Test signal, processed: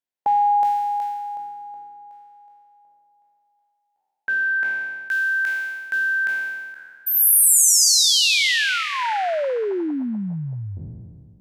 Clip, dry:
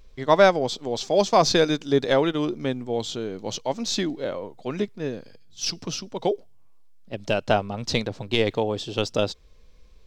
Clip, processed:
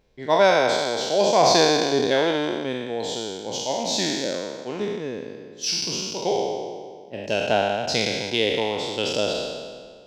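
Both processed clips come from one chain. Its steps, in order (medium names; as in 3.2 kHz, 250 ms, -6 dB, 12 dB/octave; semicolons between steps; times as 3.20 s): spectral sustain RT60 1.94 s; high-pass 220 Hz 6 dB/octave; peaking EQ 1.2 kHz -13 dB 0.24 oct; tape noise reduction on one side only decoder only; trim -2 dB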